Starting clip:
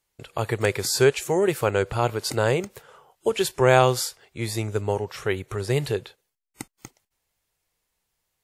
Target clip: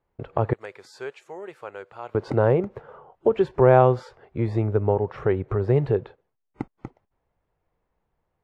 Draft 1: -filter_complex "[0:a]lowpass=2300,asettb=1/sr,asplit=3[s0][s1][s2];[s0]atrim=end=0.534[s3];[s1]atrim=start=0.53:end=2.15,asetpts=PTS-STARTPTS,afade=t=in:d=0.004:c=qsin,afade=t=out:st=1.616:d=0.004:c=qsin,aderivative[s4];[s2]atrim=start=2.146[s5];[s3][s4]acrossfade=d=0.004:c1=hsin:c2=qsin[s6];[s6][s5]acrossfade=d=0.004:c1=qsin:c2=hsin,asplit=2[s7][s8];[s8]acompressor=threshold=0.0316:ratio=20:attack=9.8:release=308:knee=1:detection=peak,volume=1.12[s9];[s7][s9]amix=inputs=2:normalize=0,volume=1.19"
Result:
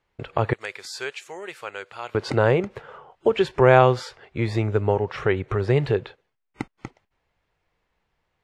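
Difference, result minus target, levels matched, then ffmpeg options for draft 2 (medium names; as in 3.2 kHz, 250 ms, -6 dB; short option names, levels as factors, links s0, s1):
2 kHz band +8.5 dB
-filter_complex "[0:a]lowpass=1000,asettb=1/sr,asplit=3[s0][s1][s2];[s0]atrim=end=0.534[s3];[s1]atrim=start=0.53:end=2.15,asetpts=PTS-STARTPTS,afade=t=in:d=0.004:c=qsin,afade=t=out:st=1.616:d=0.004:c=qsin,aderivative[s4];[s2]atrim=start=2.146[s5];[s3][s4]acrossfade=d=0.004:c1=hsin:c2=qsin[s6];[s6][s5]acrossfade=d=0.004:c1=qsin:c2=hsin,asplit=2[s7][s8];[s8]acompressor=threshold=0.0316:ratio=20:attack=9.8:release=308:knee=1:detection=peak,volume=1.12[s9];[s7][s9]amix=inputs=2:normalize=0,volume=1.19"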